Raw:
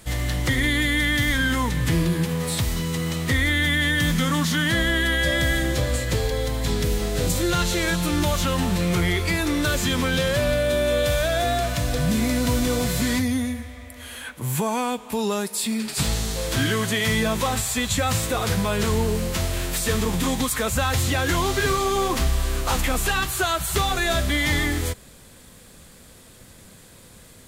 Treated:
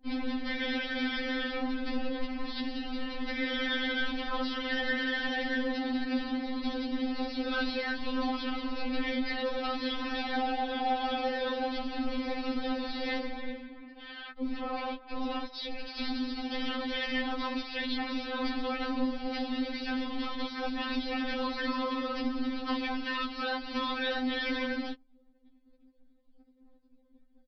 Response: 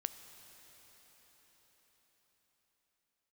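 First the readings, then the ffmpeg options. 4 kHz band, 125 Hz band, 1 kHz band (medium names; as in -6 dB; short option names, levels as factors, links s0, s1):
-9.5 dB, under -35 dB, -7.0 dB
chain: -af "afftfilt=real='hypot(re,im)*cos(2*PI*random(0))':imag='hypot(re,im)*sin(2*PI*random(1))':win_size=512:overlap=0.75,aeval=exprs='val(0)*sin(2*PI*170*n/s)':c=same,anlmdn=0.00251,aresample=11025,asoftclip=type=tanh:threshold=0.0398,aresample=44100,afftfilt=real='re*3.46*eq(mod(b,12),0)':imag='im*3.46*eq(mod(b,12),0)':win_size=2048:overlap=0.75,volume=1.68"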